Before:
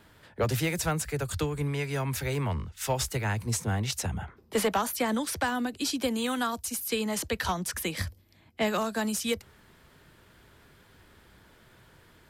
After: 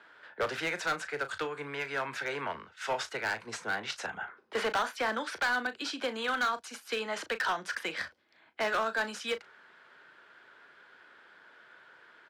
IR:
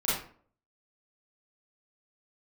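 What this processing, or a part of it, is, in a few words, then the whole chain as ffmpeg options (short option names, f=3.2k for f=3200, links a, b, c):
megaphone: -filter_complex "[0:a]highpass=490,lowpass=3.6k,equalizer=f=1.5k:t=o:w=0.4:g=9.5,asoftclip=type=hard:threshold=-25.5dB,asplit=2[a][b];[b]adelay=36,volume=-12dB[c];[a][c]amix=inputs=2:normalize=0"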